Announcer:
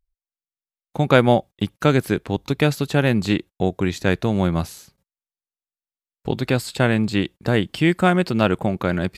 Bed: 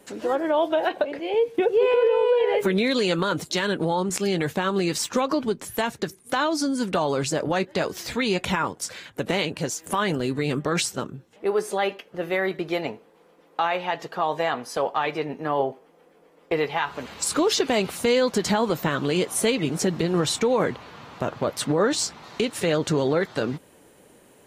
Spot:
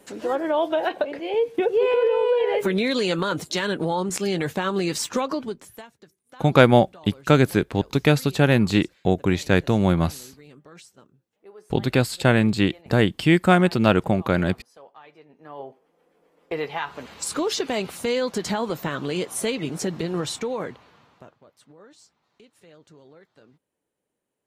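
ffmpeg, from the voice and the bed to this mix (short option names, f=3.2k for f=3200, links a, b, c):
-filter_complex "[0:a]adelay=5450,volume=0.5dB[a];[1:a]volume=19dB,afade=t=out:st=5.12:d=0.76:silence=0.0749894,afade=t=in:st=15.28:d=1.43:silence=0.105925,afade=t=out:st=20.07:d=1.31:silence=0.0562341[b];[a][b]amix=inputs=2:normalize=0"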